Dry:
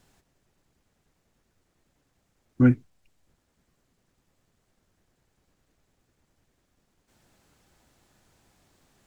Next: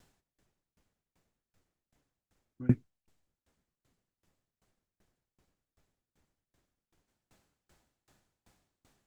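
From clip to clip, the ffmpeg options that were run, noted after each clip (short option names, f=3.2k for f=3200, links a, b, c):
-af "aeval=exprs='val(0)*pow(10,-29*if(lt(mod(2.6*n/s,1),2*abs(2.6)/1000),1-mod(2.6*n/s,1)/(2*abs(2.6)/1000),(mod(2.6*n/s,1)-2*abs(2.6)/1000)/(1-2*abs(2.6)/1000))/20)':c=same"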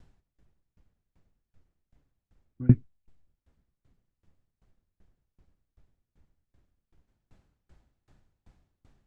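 -af "aemphasis=mode=reproduction:type=bsi"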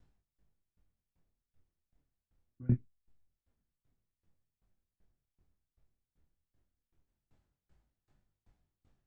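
-af "flanger=delay=20:depth=6.7:speed=0.24,volume=-7.5dB"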